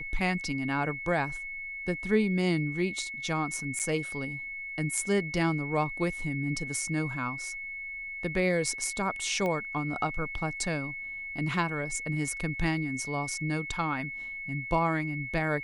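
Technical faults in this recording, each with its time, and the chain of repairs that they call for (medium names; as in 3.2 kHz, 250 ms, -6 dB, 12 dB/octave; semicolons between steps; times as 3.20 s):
whine 2.2 kHz -36 dBFS
3.79–3.80 s: dropout 7.6 ms
9.46 s: pop -20 dBFS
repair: de-click; band-stop 2.2 kHz, Q 30; interpolate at 3.79 s, 7.6 ms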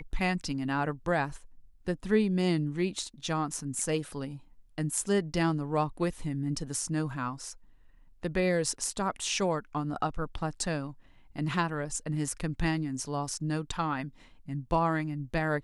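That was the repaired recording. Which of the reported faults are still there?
nothing left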